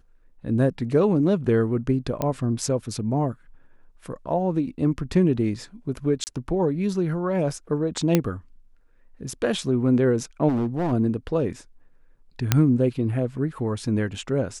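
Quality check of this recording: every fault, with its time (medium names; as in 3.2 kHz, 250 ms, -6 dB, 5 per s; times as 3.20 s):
2.22 s: pop -12 dBFS
6.24–6.27 s: dropout 29 ms
8.15 s: pop -5 dBFS
10.48–10.93 s: clipped -20.5 dBFS
12.52 s: pop -2 dBFS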